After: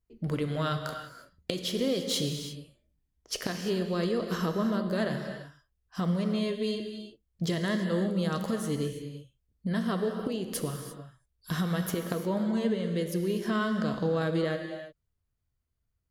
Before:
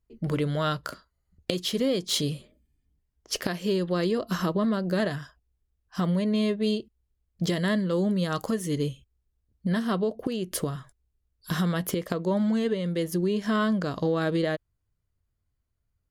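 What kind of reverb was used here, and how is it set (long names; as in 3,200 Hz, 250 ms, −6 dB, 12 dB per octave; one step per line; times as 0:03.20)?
reverb whose tail is shaped and stops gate 370 ms flat, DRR 5 dB
level −4 dB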